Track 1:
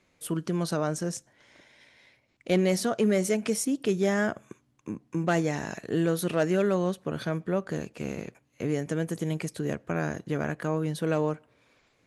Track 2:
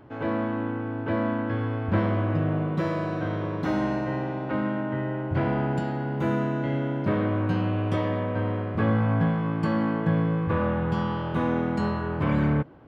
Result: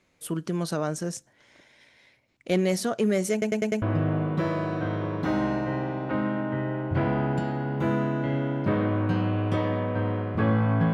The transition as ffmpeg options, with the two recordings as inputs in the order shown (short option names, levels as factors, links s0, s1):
-filter_complex "[0:a]apad=whole_dur=10.93,atrim=end=10.93,asplit=5[s0][s1][s2][s3][s4];[s0]atrim=end=3.422[s5];[s1]atrim=start=3.318:end=3.422[s6];[s2]atrim=start=3.318:end=3.422[s7];[s3]atrim=start=3.318:end=3.422[s8];[s4]atrim=start=3.318:end=3.422[s9];[1:a]atrim=start=2.218:end=9.33[s10];[s5][s6]acrossfade=d=0.004:c1=hsin:c2=hsin[s11];[s11][s7]acrossfade=d=0.004:c1=hsin:c2=hsin[s12];[s12][s8]acrossfade=d=0.004:c1=hsin:c2=hsin[s13];[s13][s9]acrossfade=d=0.004:c1=hsin:c2=hsin[s14];[s14][s10]acrossfade=d=0.004:c1=hsin:c2=hsin"